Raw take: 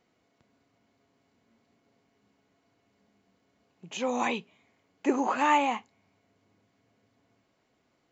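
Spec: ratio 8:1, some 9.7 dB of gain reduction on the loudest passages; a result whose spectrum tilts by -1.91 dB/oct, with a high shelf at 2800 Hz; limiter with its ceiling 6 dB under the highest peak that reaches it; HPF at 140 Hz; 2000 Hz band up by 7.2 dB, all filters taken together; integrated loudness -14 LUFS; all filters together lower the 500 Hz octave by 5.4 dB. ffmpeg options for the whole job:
-af "highpass=140,equalizer=f=500:t=o:g=-7,equalizer=f=2k:t=o:g=7,highshelf=f=2.8k:g=5,acompressor=threshold=-26dB:ratio=8,volume=20dB,alimiter=limit=-3dB:level=0:latency=1"

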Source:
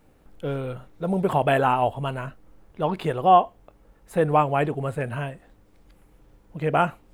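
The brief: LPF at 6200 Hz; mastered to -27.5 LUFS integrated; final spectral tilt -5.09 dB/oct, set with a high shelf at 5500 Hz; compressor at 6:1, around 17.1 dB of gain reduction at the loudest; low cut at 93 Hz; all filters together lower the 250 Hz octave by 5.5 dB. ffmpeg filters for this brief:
-af "highpass=93,lowpass=6.2k,equalizer=f=250:t=o:g=-9,highshelf=f=5.5k:g=6,acompressor=threshold=-30dB:ratio=6,volume=8dB"

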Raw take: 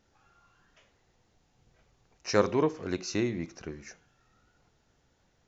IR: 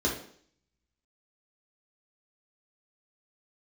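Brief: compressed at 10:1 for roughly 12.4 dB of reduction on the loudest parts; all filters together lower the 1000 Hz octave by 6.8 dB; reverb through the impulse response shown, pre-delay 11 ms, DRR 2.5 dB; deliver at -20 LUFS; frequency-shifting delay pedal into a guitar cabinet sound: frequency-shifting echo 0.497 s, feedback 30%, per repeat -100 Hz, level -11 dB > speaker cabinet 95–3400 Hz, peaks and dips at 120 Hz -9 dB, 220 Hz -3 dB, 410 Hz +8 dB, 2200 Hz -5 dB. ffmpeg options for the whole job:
-filter_complex "[0:a]equalizer=f=1k:t=o:g=-8.5,acompressor=threshold=-32dB:ratio=10,asplit=2[a][b];[1:a]atrim=start_sample=2205,adelay=11[c];[b][c]afir=irnorm=-1:irlink=0,volume=-12.5dB[d];[a][d]amix=inputs=2:normalize=0,asplit=4[e][f][g][h];[f]adelay=497,afreqshift=-100,volume=-11dB[i];[g]adelay=994,afreqshift=-200,volume=-21.5dB[j];[h]adelay=1491,afreqshift=-300,volume=-31.9dB[k];[e][i][j][k]amix=inputs=4:normalize=0,highpass=95,equalizer=f=120:t=q:w=4:g=-9,equalizer=f=220:t=q:w=4:g=-3,equalizer=f=410:t=q:w=4:g=8,equalizer=f=2.2k:t=q:w=4:g=-5,lowpass=f=3.4k:w=0.5412,lowpass=f=3.4k:w=1.3066,volume=11dB"

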